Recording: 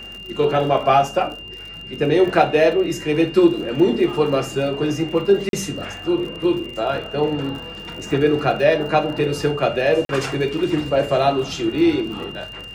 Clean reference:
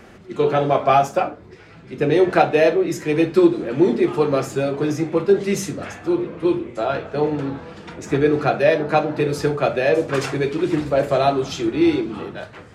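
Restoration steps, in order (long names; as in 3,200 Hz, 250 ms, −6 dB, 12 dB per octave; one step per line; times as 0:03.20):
click removal
hum removal 48.6 Hz, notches 10
notch filter 2,800 Hz, Q 30
repair the gap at 0:05.49/0:10.05, 42 ms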